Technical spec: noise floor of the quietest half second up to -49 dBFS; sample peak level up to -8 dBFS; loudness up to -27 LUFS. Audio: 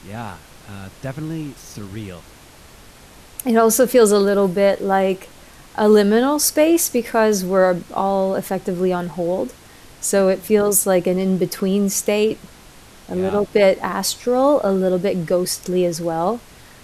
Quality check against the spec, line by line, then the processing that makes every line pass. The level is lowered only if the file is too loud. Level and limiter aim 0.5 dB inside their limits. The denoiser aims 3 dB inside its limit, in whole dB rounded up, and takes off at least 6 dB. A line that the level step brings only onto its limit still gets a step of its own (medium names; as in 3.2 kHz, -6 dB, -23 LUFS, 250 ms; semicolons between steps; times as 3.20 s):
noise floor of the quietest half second -44 dBFS: fail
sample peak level -3.5 dBFS: fail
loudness -18.0 LUFS: fail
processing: trim -9.5 dB